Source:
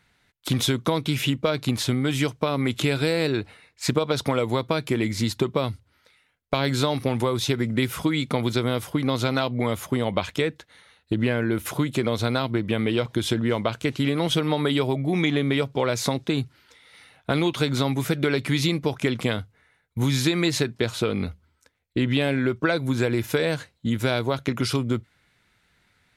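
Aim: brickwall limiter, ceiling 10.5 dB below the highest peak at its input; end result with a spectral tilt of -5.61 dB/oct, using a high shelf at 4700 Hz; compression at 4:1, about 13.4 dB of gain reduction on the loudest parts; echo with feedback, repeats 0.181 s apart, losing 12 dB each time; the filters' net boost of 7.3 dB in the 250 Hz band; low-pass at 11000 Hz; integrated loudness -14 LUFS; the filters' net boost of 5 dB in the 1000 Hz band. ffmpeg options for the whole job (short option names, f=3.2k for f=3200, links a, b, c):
-af "lowpass=11k,equalizer=f=250:t=o:g=8.5,equalizer=f=1k:t=o:g=6,highshelf=f=4.7k:g=-3.5,acompressor=threshold=-30dB:ratio=4,alimiter=limit=-22.5dB:level=0:latency=1,aecho=1:1:181|362|543:0.251|0.0628|0.0157,volume=19.5dB"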